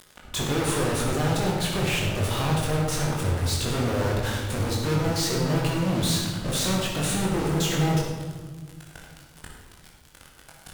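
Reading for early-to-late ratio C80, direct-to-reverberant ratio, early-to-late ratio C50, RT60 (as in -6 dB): 3.5 dB, -3.5 dB, 1.0 dB, 1.6 s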